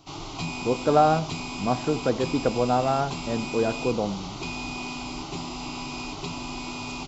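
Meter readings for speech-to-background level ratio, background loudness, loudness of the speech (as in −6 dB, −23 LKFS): 8.0 dB, −33.5 LKFS, −25.5 LKFS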